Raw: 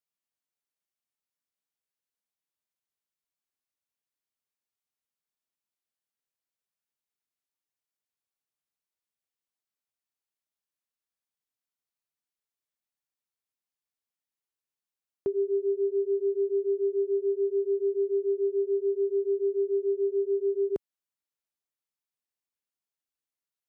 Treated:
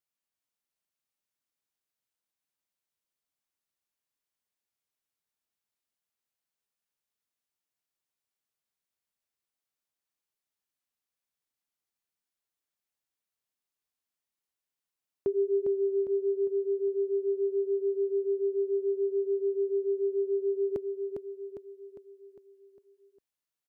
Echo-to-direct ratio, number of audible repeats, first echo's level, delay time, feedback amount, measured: -4.0 dB, 6, -5.5 dB, 404 ms, 51%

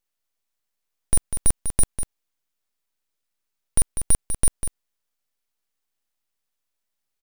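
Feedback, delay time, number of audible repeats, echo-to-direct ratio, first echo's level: no regular repeats, 197 ms, 1, -9.0 dB, -9.0 dB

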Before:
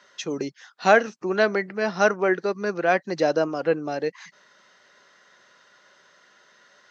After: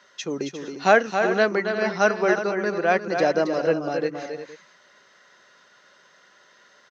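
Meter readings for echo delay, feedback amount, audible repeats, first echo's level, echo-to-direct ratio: 272 ms, no regular repeats, 3, -7.0 dB, -5.5 dB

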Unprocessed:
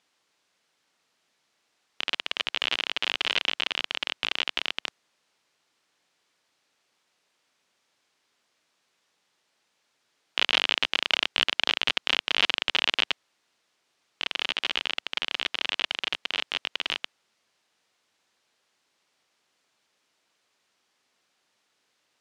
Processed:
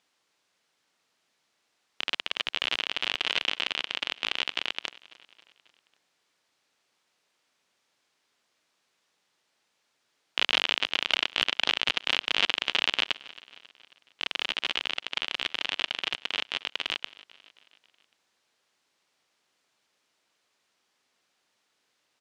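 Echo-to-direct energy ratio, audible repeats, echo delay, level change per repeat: -19.0 dB, 3, 271 ms, -5.0 dB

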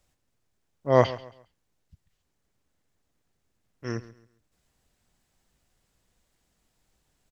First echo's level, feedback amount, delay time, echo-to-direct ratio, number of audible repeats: -17.5 dB, 30%, 136 ms, -17.0 dB, 2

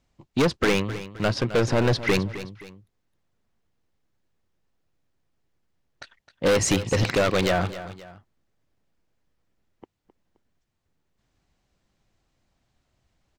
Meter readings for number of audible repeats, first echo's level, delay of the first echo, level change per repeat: 2, -14.0 dB, 262 ms, -8.0 dB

